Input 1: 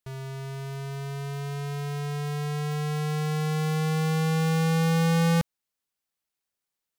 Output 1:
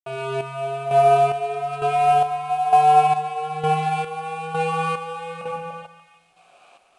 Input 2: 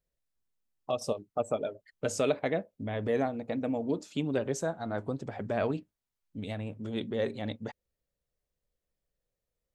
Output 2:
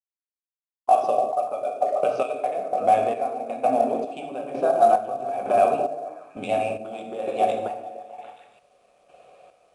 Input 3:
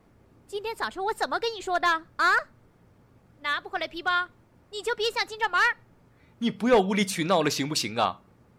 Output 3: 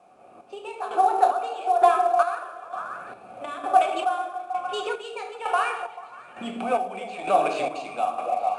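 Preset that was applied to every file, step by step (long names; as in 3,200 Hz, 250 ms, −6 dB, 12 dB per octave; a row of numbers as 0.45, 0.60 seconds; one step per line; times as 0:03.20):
camcorder AGC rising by 23 dB per second
high-pass filter 58 Hz 24 dB per octave
downward compressor 16 to 1, threshold −25 dBFS
formant filter a
low-shelf EQ 450 Hz −5 dB
rectangular room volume 340 cubic metres, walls mixed, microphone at 0.99 metres
bad sample-rate conversion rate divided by 4×, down filtered, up hold
high-frequency loss of the air 74 metres
notch filter 1,100 Hz, Q 16
on a send: echo through a band-pass that steps 146 ms, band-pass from 300 Hz, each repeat 0.7 octaves, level −2 dB
on the sum: square-wave tremolo 1.1 Hz, depth 60%, duty 45%
IMA ADPCM 88 kbit/s 22,050 Hz
normalise the peak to −6 dBFS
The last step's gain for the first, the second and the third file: +24.5, +21.0, +17.5 decibels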